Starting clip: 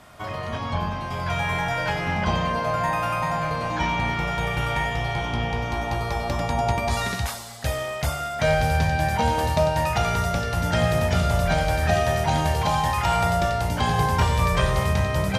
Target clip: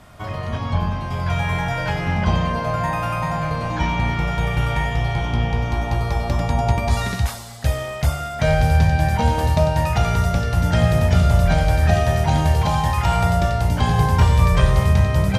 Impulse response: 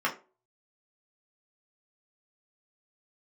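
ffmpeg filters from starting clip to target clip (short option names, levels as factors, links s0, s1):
-af "lowshelf=f=190:g=9.5"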